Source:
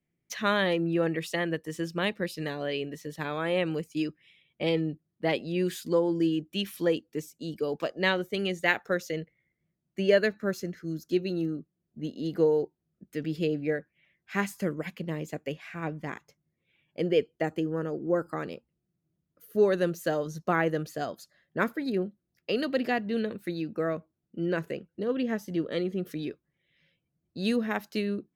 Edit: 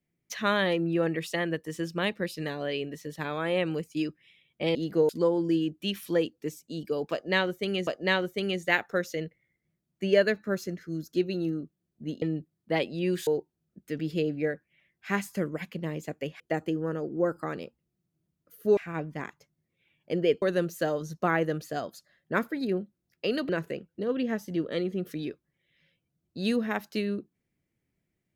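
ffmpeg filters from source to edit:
-filter_complex "[0:a]asplit=10[s0][s1][s2][s3][s4][s5][s6][s7][s8][s9];[s0]atrim=end=4.752[s10];[s1]atrim=start=12.178:end=12.522[s11];[s2]atrim=start=5.798:end=8.582[s12];[s3]atrim=start=7.828:end=12.182[s13];[s4]atrim=start=4.748:end=5.802[s14];[s5]atrim=start=12.518:end=15.652[s15];[s6]atrim=start=17.298:end=19.672[s16];[s7]atrim=start=15.648:end=17.302[s17];[s8]atrim=start=19.668:end=22.742[s18];[s9]atrim=start=24.488[s19];[s10][s11]acrossfade=d=0.004:c1=hsin:c2=hsin[s20];[s20][s12]acrossfade=d=0.004:c1=hsin:c2=hsin[s21];[s21][s13]acrossfade=d=0.004:c1=hsin:c2=hsin[s22];[s22][s14]acrossfade=d=0.004:c1=hsin:c2=hsin[s23];[s23][s15]acrossfade=d=0.004:c1=hsin:c2=hsin[s24];[s24][s16]acrossfade=d=0.004:c1=hsin:c2=hsin[s25];[s25][s17]acrossfade=d=0.004:c1=hsin:c2=hsin[s26];[s26][s18]acrossfade=d=0.004:c1=hsin:c2=hsin[s27];[s27][s19]acrossfade=d=0.004:c1=hsin:c2=hsin"

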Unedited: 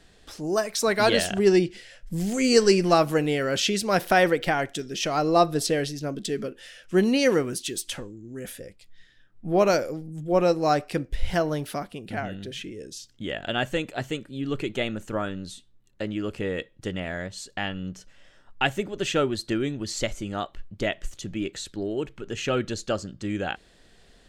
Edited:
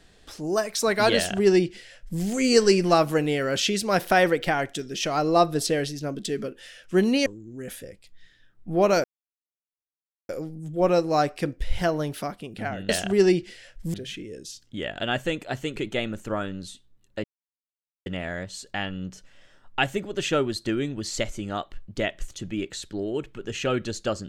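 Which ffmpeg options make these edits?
-filter_complex "[0:a]asplit=8[s0][s1][s2][s3][s4][s5][s6][s7];[s0]atrim=end=7.262[s8];[s1]atrim=start=8.028:end=9.81,asetpts=PTS-STARTPTS,afade=t=out:st=1.778:d=0.004:c=hsin,apad=pad_dur=1.25[s9];[s2]atrim=start=9.81:end=12.412,asetpts=PTS-STARTPTS,afade=t=in:d=0.004:c=hsin[s10];[s3]atrim=start=1.158:end=2.212[s11];[s4]atrim=start=12.408:end=14.232[s12];[s5]atrim=start=14.588:end=16.07,asetpts=PTS-STARTPTS,afade=t=out:st=1.478:d=0.004:c=hsin[s13];[s6]atrim=start=16.07:end=16.89,asetpts=PTS-STARTPTS,volume=0[s14];[s7]atrim=start=16.89,asetpts=PTS-STARTPTS,afade=t=in:d=0.004:c=hsin[s15];[s9][s10]concat=n=2:v=0:a=1[s16];[s8][s16]acrossfade=d=0.004:c1=hsin:c2=hsin[s17];[s17][s11]acrossfade=d=0.004:c1=hsin:c2=hsin[s18];[s18][s12]acrossfade=d=0.004:c1=hsin:c2=hsin[s19];[s13][s14][s15]concat=n=3:v=0:a=1[s20];[s19][s20]acrossfade=d=0.004:c1=hsin:c2=hsin"

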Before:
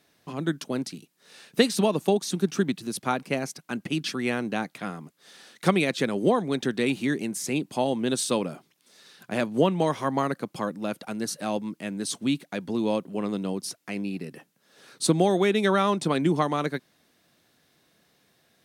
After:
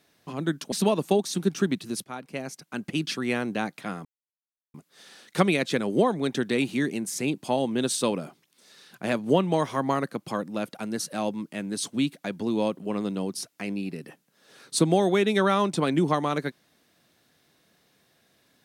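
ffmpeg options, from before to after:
-filter_complex "[0:a]asplit=4[s0][s1][s2][s3];[s0]atrim=end=0.722[s4];[s1]atrim=start=1.688:end=3.01,asetpts=PTS-STARTPTS,afade=t=out:st=1.318:d=0.004:c=hsin:silence=0.188365[s5];[s2]atrim=start=3.01:end=5.02,asetpts=PTS-STARTPTS,afade=t=in:d=0.92:silence=0.188365,afade=t=out:st=2.006:d=0.004:c=hsin,apad=pad_dur=0.69[s6];[s3]atrim=start=5.02,asetpts=PTS-STARTPTS,afade=t=in:d=0.004:c=hsin[s7];[s5][s6][s7]concat=n=3:v=0:a=1[s8];[s4][s8]acrossfade=d=0.004:c1=hsin:c2=hsin"

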